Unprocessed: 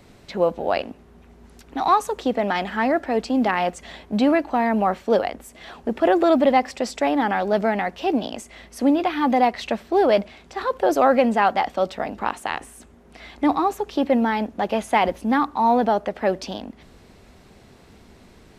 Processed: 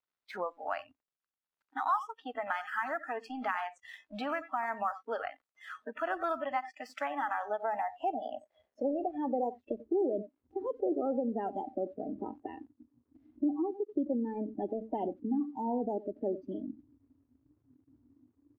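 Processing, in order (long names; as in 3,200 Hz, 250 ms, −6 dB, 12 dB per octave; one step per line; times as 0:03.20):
band-pass filter sweep 1,300 Hz → 330 Hz, 0:07.08–0:09.94
downward compressor 2.5 to 1, threshold −38 dBFS, peak gain reduction 15 dB
hum removal 54.94 Hz, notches 4
far-end echo of a speakerphone 90 ms, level −11 dB
dead-zone distortion −59.5 dBFS
noise reduction from a noise print of the clip's start 25 dB
level +4.5 dB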